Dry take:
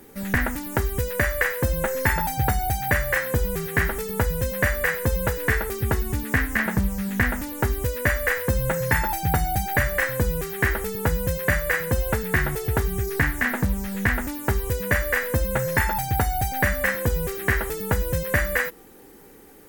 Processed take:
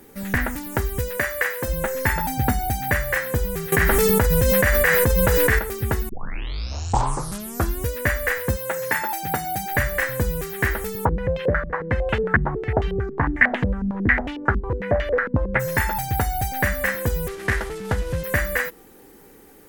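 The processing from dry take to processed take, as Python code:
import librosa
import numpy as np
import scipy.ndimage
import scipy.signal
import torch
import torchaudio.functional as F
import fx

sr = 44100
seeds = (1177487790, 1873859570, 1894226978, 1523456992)

y = fx.highpass(x, sr, hz=280.0, slope=6, at=(1.17, 1.68))
y = fx.peak_eq(y, sr, hz=250.0, db=12.0, octaves=0.41, at=(2.24, 2.91))
y = fx.env_flatten(y, sr, amount_pct=100, at=(3.72, 5.59))
y = fx.highpass(y, sr, hz=fx.line((8.55, 440.0), (9.71, 140.0)), slope=12, at=(8.55, 9.71), fade=0.02)
y = fx.filter_held_lowpass(y, sr, hz=11.0, low_hz=230.0, high_hz=3000.0, at=(11.04, 15.59), fade=0.02)
y = fx.cvsd(y, sr, bps=64000, at=(17.28, 18.24))
y = fx.edit(y, sr, fx.tape_start(start_s=6.09, length_s=1.82), tone=tone)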